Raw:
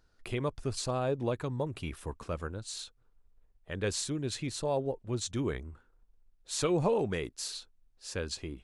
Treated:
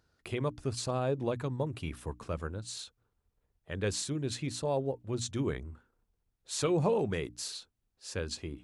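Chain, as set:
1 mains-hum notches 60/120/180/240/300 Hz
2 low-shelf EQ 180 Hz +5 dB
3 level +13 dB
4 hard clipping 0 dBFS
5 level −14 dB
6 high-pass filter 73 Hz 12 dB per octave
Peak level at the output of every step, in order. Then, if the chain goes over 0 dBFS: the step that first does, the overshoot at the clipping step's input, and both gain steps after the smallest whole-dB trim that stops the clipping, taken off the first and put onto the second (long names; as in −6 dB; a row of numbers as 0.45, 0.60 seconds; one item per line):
−17.0, −16.5, −3.5, −3.5, −17.5, −17.0 dBFS
no step passes full scale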